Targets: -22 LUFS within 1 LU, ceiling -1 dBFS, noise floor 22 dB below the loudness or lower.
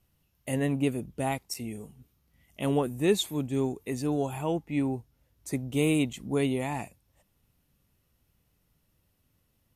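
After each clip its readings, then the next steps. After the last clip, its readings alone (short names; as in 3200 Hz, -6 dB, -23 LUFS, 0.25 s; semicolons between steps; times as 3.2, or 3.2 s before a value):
dropouts 2; longest dropout 4.9 ms; loudness -30.0 LUFS; peak -13.5 dBFS; loudness target -22.0 LUFS
-> interpolate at 1.54/6.13, 4.9 ms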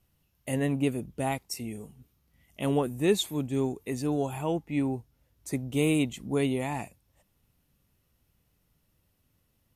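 dropouts 0; loudness -30.0 LUFS; peak -13.5 dBFS; loudness target -22.0 LUFS
-> gain +8 dB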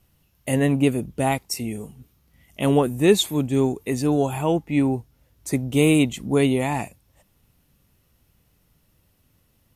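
loudness -22.0 LUFS; peak -5.5 dBFS; noise floor -65 dBFS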